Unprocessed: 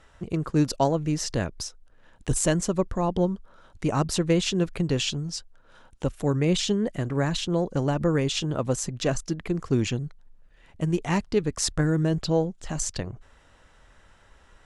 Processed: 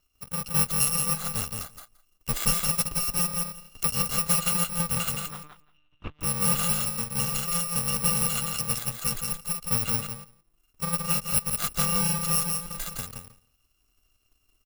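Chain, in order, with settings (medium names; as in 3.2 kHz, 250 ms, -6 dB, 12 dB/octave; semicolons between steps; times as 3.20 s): bit-reversed sample order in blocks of 128 samples; small resonant body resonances 1.2/2.8 kHz, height 12 dB, ringing for 50 ms; 5.26–6.21 s: monotone LPC vocoder at 8 kHz 150 Hz; on a send: feedback delay 170 ms, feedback 16%, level -3 dB; on the sum: power-law waveshaper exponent 1.4; 3.14–3.90 s: three bands compressed up and down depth 100%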